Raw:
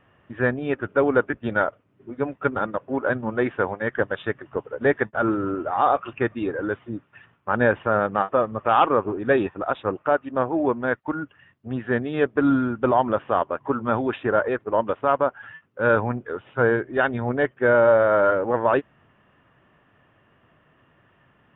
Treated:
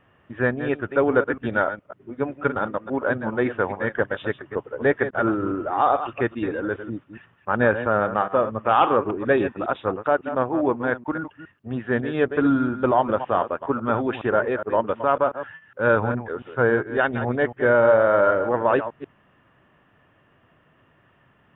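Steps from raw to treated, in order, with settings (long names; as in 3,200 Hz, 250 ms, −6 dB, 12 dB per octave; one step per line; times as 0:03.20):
delay that plays each chunk backwards 138 ms, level −10.5 dB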